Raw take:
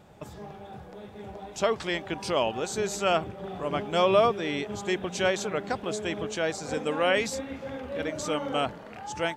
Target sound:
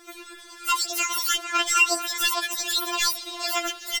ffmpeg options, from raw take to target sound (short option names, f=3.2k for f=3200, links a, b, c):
-filter_complex "[0:a]asplit=2[a][b];[b]adelay=1050,volume=-9dB,highshelf=f=4k:g=-23.6[c];[a][c]amix=inputs=2:normalize=0,acrossover=split=690|950[d][e][f];[f]aeval=exprs='0.178*sin(PI/2*2.51*val(0)/0.178)':c=same[g];[d][e][g]amix=inputs=3:normalize=0,aphaser=in_gain=1:out_gain=1:delay=2.7:decay=0.32:speed=0.91:type=triangular,asetrate=103194,aresample=44100,afftfilt=real='re*4*eq(mod(b,16),0)':imag='im*4*eq(mod(b,16),0)':win_size=2048:overlap=0.75"